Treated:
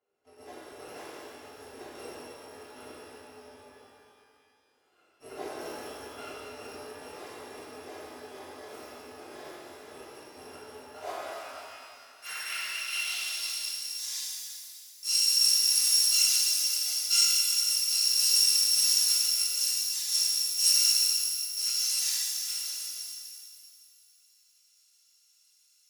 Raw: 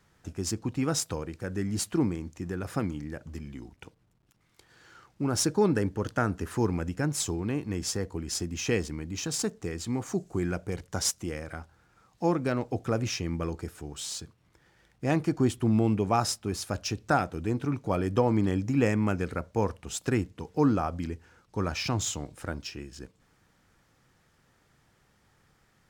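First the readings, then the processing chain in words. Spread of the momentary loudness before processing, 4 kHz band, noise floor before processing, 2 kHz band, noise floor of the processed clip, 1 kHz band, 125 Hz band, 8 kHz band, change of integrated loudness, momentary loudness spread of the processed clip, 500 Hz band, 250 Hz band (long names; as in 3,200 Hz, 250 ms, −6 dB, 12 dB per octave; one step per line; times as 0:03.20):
13 LU, +13.0 dB, −67 dBFS, −1.0 dB, −65 dBFS, −11.0 dB, below −30 dB, +8.5 dB, +6.0 dB, 22 LU, −14.0 dB, −24.0 dB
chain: samples in bit-reversed order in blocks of 256 samples
low-shelf EQ 260 Hz −11.5 dB
noise that follows the level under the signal 13 dB
band-pass filter sweep 410 Hz → 5,700 Hz, 0:10.60–0:13.77
reverb with rising layers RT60 2.3 s, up +12 semitones, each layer −8 dB, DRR −10.5 dB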